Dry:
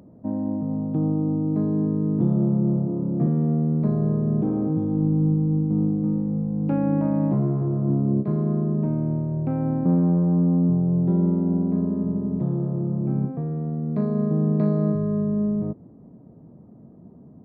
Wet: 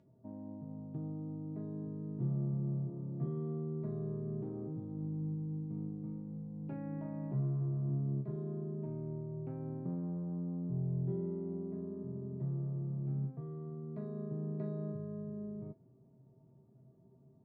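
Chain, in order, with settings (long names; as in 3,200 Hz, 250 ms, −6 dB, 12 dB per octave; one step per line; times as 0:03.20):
high-frequency loss of the air 57 metres
tuned comb filter 130 Hz, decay 0.22 s, harmonics odd, mix 90%
level −4.5 dB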